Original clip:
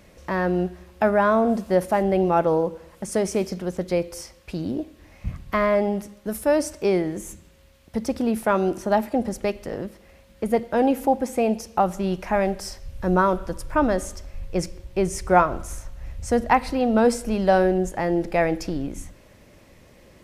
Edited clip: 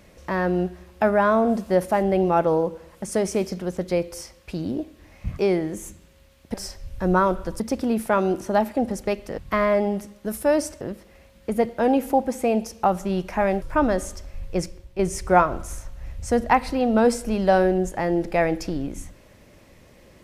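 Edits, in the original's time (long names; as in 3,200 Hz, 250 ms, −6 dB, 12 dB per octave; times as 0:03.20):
0:05.39–0:06.82: move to 0:09.75
0:12.56–0:13.62: move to 0:07.97
0:14.56–0:14.99: fade out, to −9 dB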